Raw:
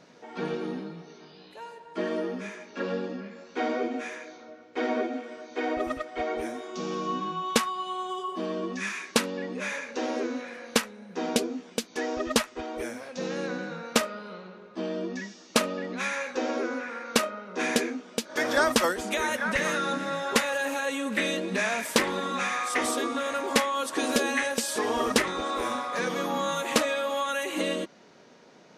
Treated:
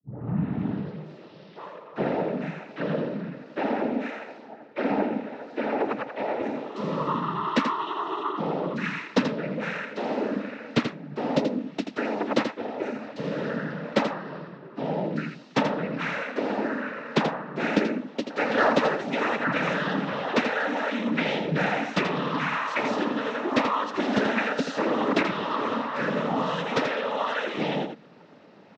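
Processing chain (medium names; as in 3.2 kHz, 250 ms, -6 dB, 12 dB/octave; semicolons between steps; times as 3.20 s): tape start-up on the opening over 0.93 s; tone controls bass +2 dB, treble +3 dB; comb 4.7 ms, depth 34%; noise-vocoded speech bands 12; in parallel at -7.5 dB: saturation -22 dBFS, distortion -10 dB; on the sum: distance through air 280 m; on a send: delay 83 ms -7.5 dB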